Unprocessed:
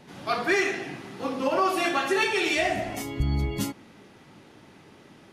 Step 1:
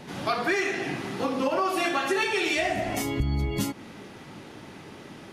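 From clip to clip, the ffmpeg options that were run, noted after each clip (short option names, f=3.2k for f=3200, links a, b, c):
-af "acompressor=threshold=-33dB:ratio=3,volume=7.5dB"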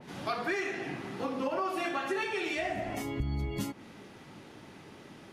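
-af "adynamicequalizer=threshold=0.00708:dfrequency=3000:dqfactor=0.7:tfrequency=3000:tqfactor=0.7:attack=5:release=100:ratio=0.375:range=3:mode=cutabove:tftype=highshelf,volume=-6.5dB"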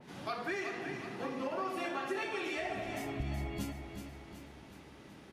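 -af "aecho=1:1:373|746|1119|1492|1865|2238:0.398|0.211|0.112|0.0593|0.0314|0.0166,volume=-5dB"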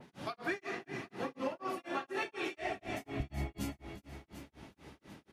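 -af "tremolo=f=4.1:d=1,volume=2.5dB"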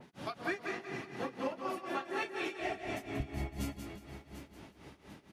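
-af "aecho=1:1:184|368|552:0.422|0.097|0.0223"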